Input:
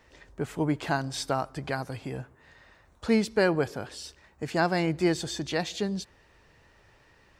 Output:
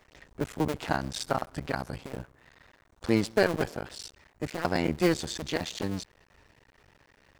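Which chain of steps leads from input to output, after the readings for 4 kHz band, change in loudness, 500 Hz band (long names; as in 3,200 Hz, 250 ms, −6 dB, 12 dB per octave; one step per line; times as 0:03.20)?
−1.0 dB, −1.5 dB, −1.5 dB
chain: sub-harmonics by changed cycles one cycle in 2, muted
level +1.5 dB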